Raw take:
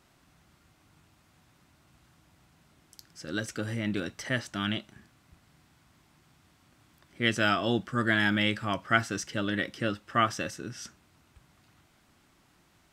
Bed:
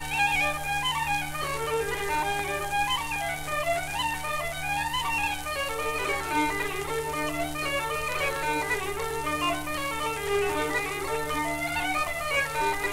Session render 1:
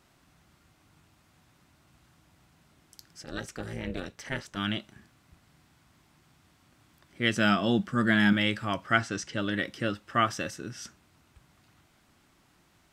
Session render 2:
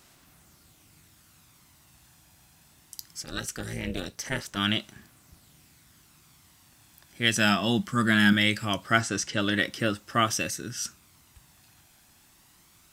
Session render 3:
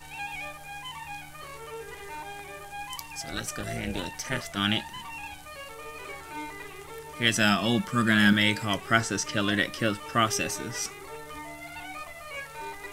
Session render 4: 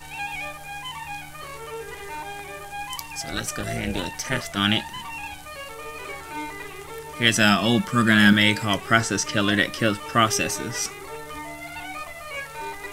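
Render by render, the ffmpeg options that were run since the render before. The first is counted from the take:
ffmpeg -i in.wav -filter_complex "[0:a]asettb=1/sr,asplit=3[link_01][link_02][link_03];[link_01]atrim=end=3.234[link_04];[link_02]atrim=start=3.23:end=4.57,asetpts=PTS-STARTPTS,afade=type=in:duration=0.004:curve=qsin,afade=type=out:start_time=1.336:duration=0.004:curve=qsin,tremolo=f=280:d=1[link_05];[link_03]atrim=start=4.566[link_06];[link_04][link_05]acrossfade=duration=0.004:curve1=hsin:curve2=qsin[link_07];[link_07][link_06]acrossfade=duration=0.004:curve1=qsin:curve2=hsin,asettb=1/sr,asplit=3[link_08][link_09][link_10];[link_08]atrim=end=7.354[link_11];[link_09]atrim=start=7.35:end=8.33,asetpts=PTS-STARTPTS,afade=type=in:duration=0.004:curve=qsin,afade=type=out:start_time=0.976:duration=0.004:curve=qsin,equalizer=frequency=200:width=3.8:gain=10[link_12];[link_10]atrim=start=8.326[link_13];[link_11][link_12]acrossfade=duration=0.004:curve1=hsin:curve2=qsin[link_14];[link_14][link_13]acrossfade=duration=0.004:curve1=qsin:curve2=hsin,asettb=1/sr,asplit=3[link_15][link_16][link_17];[link_15]atrim=end=8.984[link_18];[link_16]atrim=start=8.98:end=9.4,asetpts=PTS-STARTPTS,afade=type=in:duration=0.004:curve=qsin,afade=type=out:start_time=0.416:duration=0.004:curve=qsin,lowpass=7700[link_19];[link_17]atrim=start=9.396[link_20];[link_18][link_19]acrossfade=duration=0.004:curve1=hsin:curve2=qsin[link_21];[link_21][link_20]acrossfade=duration=0.004:curve1=qsin:curve2=hsin" out.wav
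ffmpeg -i in.wav -af "crystalizer=i=3:c=0,aphaser=in_gain=1:out_gain=1:delay=1.2:decay=0.29:speed=0.21:type=sinusoidal" out.wav
ffmpeg -i in.wav -i bed.wav -filter_complex "[1:a]volume=-12dB[link_01];[0:a][link_01]amix=inputs=2:normalize=0" out.wav
ffmpeg -i in.wav -af "volume=5dB,alimiter=limit=-3dB:level=0:latency=1" out.wav

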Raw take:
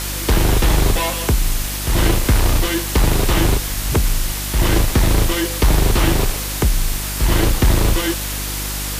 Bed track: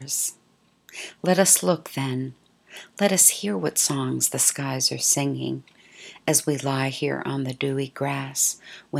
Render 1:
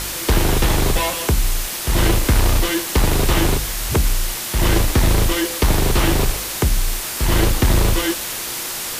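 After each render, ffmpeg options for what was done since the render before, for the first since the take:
ffmpeg -i in.wav -af "bandreject=frequency=50:width_type=h:width=4,bandreject=frequency=100:width_type=h:width=4,bandreject=frequency=150:width_type=h:width=4,bandreject=frequency=200:width_type=h:width=4,bandreject=frequency=250:width_type=h:width=4,bandreject=frequency=300:width_type=h:width=4" out.wav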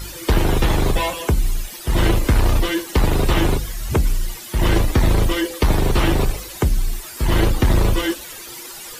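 ffmpeg -i in.wav -af "afftdn=noise_reduction=14:noise_floor=-27" out.wav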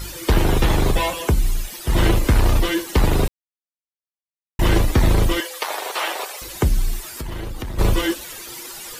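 ffmpeg -i in.wav -filter_complex "[0:a]asettb=1/sr,asplit=3[link_01][link_02][link_03];[link_01]atrim=end=5.404[link_04];[link_02]atrim=start=5.4:end=6.42,asetpts=PTS-STARTPTS,afade=type=in:duration=0.004:curve=qsin,afade=type=out:start_time=1.016:duration=0.004:curve=qsin,highpass=frequency=580:width=0.5412,highpass=frequency=580:width=1.3066[link_05];[link_03]atrim=start=6.416[link_06];[link_04][link_05]acrossfade=duration=0.004:curve1=hsin:curve2=qsin[link_07];[link_07][link_06]acrossfade=duration=0.004:curve1=qsin:curve2=hsin,asplit=3[link_08][link_09][link_10];[link_08]afade=type=out:start_time=7.02:duration=0.02[link_11];[link_09]acompressor=threshold=-25dB:ratio=16:attack=3.2:release=140:knee=1:detection=peak,afade=type=in:start_time=7.02:duration=0.02,afade=type=out:start_time=7.78:duration=0.02[link_12];[link_10]afade=type=in:start_time=7.78:duration=0.02[link_13];[link_11][link_12][link_13]amix=inputs=3:normalize=0,asplit=3[link_14][link_15][link_16];[link_14]atrim=end=3.28,asetpts=PTS-STARTPTS,afade=type=out:start_time=3.276:duration=0.004:curve=hsin[link_17];[link_15]atrim=start=3.28:end=4.59,asetpts=PTS-STARTPTS,volume=0[link_18];[link_16]atrim=start=4.59,asetpts=PTS-STARTPTS,afade=type=in:duration=0.004:curve=hsin[link_19];[link_17][link_18][link_19]concat=n=3:v=0:a=1" out.wav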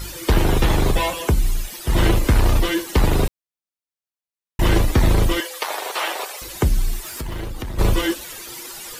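ffmpeg -i in.wav -filter_complex "[0:a]asettb=1/sr,asplit=3[link_01][link_02][link_03];[link_01]atrim=end=7.054[link_04];[link_02]atrim=start=7.05:end=7.46,asetpts=PTS-STARTPTS,afade=type=in:duration=0.004:curve=qsin,afade=type=out:start_time=0.406:duration=0.004:curve=qsin,aeval=exprs='val(0)+0.5*0.01*sgn(val(0))':channel_layout=same[link_05];[link_03]atrim=start=7.456[link_06];[link_04][link_05]acrossfade=duration=0.004:curve1=hsin:curve2=qsin[link_07];[link_07][link_06]acrossfade=duration=0.004:curve1=qsin:curve2=hsin" out.wav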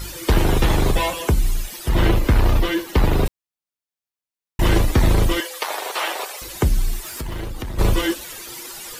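ffmpeg -i in.wav -filter_complex "[0:a]asettb=1/sr,asplit=3[link_01][link_02][link_03];[link_01]atrim=end=1.894[link_04];[link_02]atrim=start=1.89:end=3.26,asetpts=PTS-STARTPTS,afade=type=in:duration=0.004:curve=qsin,afade=type=out:start_time=1.366:duration=0.004:curve=qsin,equalizer=frequency=8500:width=0.71:gain=-7.5[link_05];[link_03]atrim=start=3.256[link_06];[link_04][link_05]acrossfade=duration=0.004:curve1=hsin:curve2=qsin[link_07];[link_07][link_06]acrossfade=duration=0.004:curve1=qsin:curve2=hsin" out.wav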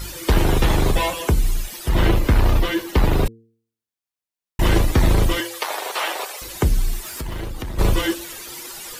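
ffmpeg -i in.wav -af "bandreject=frequency=113.5:width_type=h:width=4,bandreject=frequency=227:width_type=h:width=4,bandreject=frequency=340.5:width_type=h:width=4,bandreject=frequency=454:width_type=h:width=4" out.wav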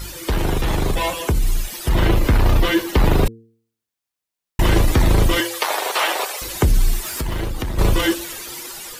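ffmpeg -i in.wav -af "alimiter=limit=-13dB:level=0:latency=1:release=12,dynaudnorm=framelen=680:gausssize=5:maxgain=5dB" out.wav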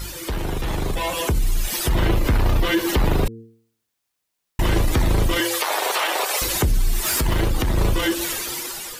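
ffmpeg -i in.wav -af "alimiter=limit=-19dB:level=0:latency=1:release=137,dynaudnorm=framelen=460:gausssize=5:maxgain=7dB" out.wav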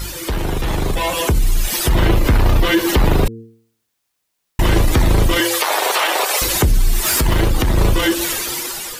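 ffmpeg -i in.wav -af "volume=5dB" out.wav

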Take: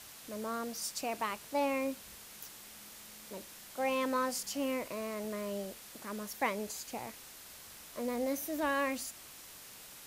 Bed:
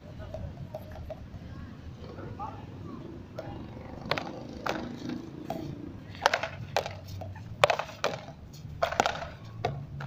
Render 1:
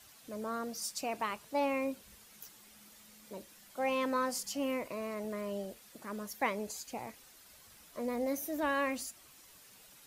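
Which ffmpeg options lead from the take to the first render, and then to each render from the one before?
ffmpeg -i in.wav -af "afftdn=noise_reduction=9:noise_floor=-52" out.wav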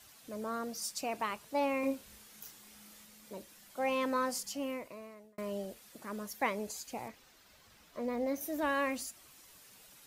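ffmpeg -i in.wav -filter_complex "[0:a]asettb=1/sr,asplit=3[link_01][link_02][link_03];[link_01]atrim=end=1.804[link_04];[link_02]atrim=start=1.8:end=3.05,asetpts=PTS-STARTPTS,afade=type=in:duration=0.004:curve=qsin,afade=type=out:start_time=1.246:duration=0.004:curve=qsin,asplit=2[link_05][link_06];[link_06]adelay=33,volume=-3.5dB[link_07];[link_05][link_07]amix=inputs=2:normalize=0,atrim=end_sample=55125[link_08];[link_03]atrim=start=3.046[link_09];[link_04][link_08]acrossfade=duration=0.004:curve1=hsin:curve2=qsin[link_10];[link_10][link_09]acrossfade=duration=0.004:curve1=qsin:curve2=hsin,asettb=1/sr,asplit=3[link_11][link_12][link_13];[link_11]atrim=end=7.084[link_14];[link_12]atrim=start=7.08:end=8.41,asetpts=PTS-STARTPTS,afade=type=in:duration=0.004:curve=qsin,afade=type=out:start_time=1.326:duration=0.004:curve=qsin,equalizer=frequency=11000:width_type=o:width=1.2:gain=-11[link_15];[link_13]atrim=start=8.406[link_16];[link_14][link_15]acrossfade=duration=0.004:curve1=hsin:curve2=qsin[link_17];[link_17][link_16]acrossfade=duration=0.004:curve1=qsin:curve2=hsin,asplit=2[link_18][link_19];[link_18]atrim=end=5.38,asetpts=PTS-STARTPTS,afade=type=out:start_time=4.33:duration=1.05[link_20];[link_19]atrim=start=5.38,asetpts=PTS-STARTPTS,afade=type=in:duration=0.004:curve=hsin[link_21];[link_20][link_21]concat=n=2:v=0:a=1" out.wav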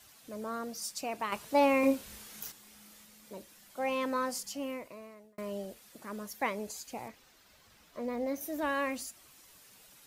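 ffmpeg -i in.wav -filter_complex "[0:a]asettb=1/sr,asplit=3[link_01][link_02][link_03];[link_01]atrim=end=1.324[link_04];[link_02]atrim=start=1.32:end=2.52,asetpts=PTS-STARTPTS,afade=type=in:duration=0.004:curve=qsin,afade=type=out:start_time=1.196:duration=0.004:curve=qsin,acontrast=75[link_05];[link_03]atrim=start=2.516[link_06];[link_04][link_05]acrossfade=duration=0.004:curve1=hsin:curve2=qsin[link_07];[link_07][link_06]acrossfade=duration=0.004:curve1=qsin:curve2=hsin" out.wav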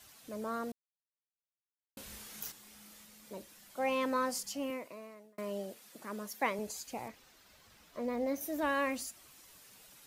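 ffmpeg -i in.wav -filter_complex "[0:a]asettb=1/sr,asplit=3[link_01][link_02][link_03];[link_01]atrim=end=4.704[link_04];[link_02]atrim=start=4.7:end=6.59,asetpts=PTS-STARTPTS,afade=type=in:duration=0.004:curve=qsin,afade=type=out:start_time=1.886:duration=0.004:curve=qsin,highpass=160[link_05];[link_03]atrim=start=6.586[link_06];[link_04][link_05]acrossfade=duration=0.004:curve1=hsin:curve2=qsin[link_07];[link_07][link_06]acrossfade=duration=0.004:curve1=qsin:curve2=hsin,asplit=3[link_08][link_09][link_10];[link_08]atrim=end=0.72,asetpts=PTS-STARTPTS,afade=type=out:start_time=0.716:duration=0.004:curve=hsin[link_11];[link_09]atrim=start=0.72:end=1.97,asetpts=PTS-STARTPTS,volume=0[link_12];[link_10]atrim=start=1.97,asetpts=PTS-STARTPTS,afade=type=in:duration=0.004:curve=hsin[link_13];[link_11][link_12][link_13]concat=n=3:v=0:a=1" out.wav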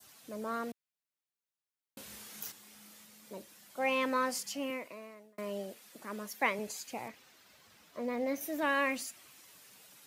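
ffmpeg -i in.wav -af "highpass=110,adynamicequalizer=threshold=0.00282:dfrequency=2300:dqfactor=1.1:tfrequency=2300:tqfactor=1.1:attack=5:release=100:ratio=0.375:range=3:mode=boostabove:tftype=bell" out.wav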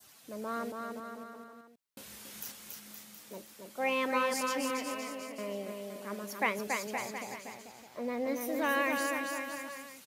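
ffmpeg -i in.wav -af "aecho=1:1:280|518|720.3|892.3|1038:0.631|0.398|0.251|0.158|0.1" out.wav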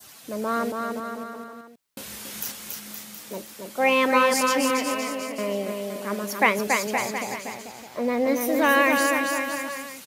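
ffmpeg -i in.wav -af "volume=11dB" out.wav

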